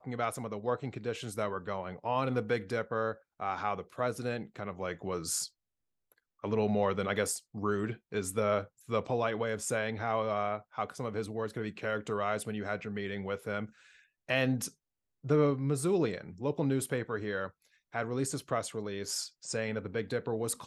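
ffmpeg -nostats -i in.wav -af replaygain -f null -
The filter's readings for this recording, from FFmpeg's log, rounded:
track_gain = +14.1 dB
track_peak = 0.125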